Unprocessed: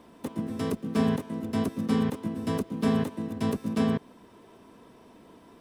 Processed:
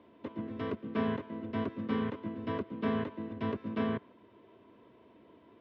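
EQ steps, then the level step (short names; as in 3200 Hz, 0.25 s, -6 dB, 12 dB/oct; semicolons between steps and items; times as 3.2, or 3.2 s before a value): thirty-one-band EQ 160 Hz -9 dB, 800 Hz -11 dB, 1250 Hz -8 dB; dynamic EQ 1400 Hz, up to +7 dB, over -50 dBFS, Q 1.1; speaker cabinet 100–2900 Hz, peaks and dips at 180 Hz -5 dB, 250 Hz -6 dB, 470 Hz -4 dB, 1700 Hz -6 dB, 2500 Hz -4 dB; -1.5 dB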